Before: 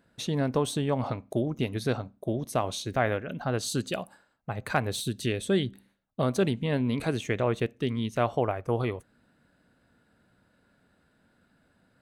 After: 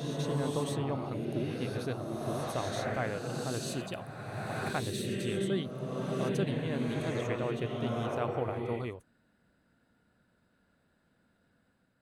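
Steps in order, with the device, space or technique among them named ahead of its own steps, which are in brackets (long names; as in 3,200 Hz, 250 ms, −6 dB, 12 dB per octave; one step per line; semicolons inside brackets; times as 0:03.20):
reverse reverb (reversed playback; convolution reverb RT60 2.6 s, pre-delay 76 ms, DRR −1 dB; reversed playback)
level −8.5 dB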